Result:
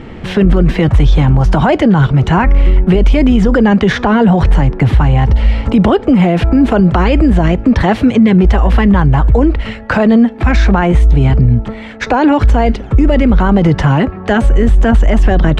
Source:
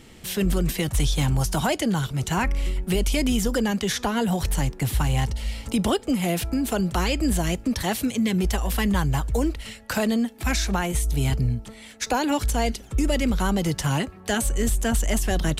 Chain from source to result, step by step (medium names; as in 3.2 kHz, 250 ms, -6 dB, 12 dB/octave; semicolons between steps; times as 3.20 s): low-pass 1.7 kHz 12 dB/octave; loudness maximiser +20.5 dB; trim -1 dB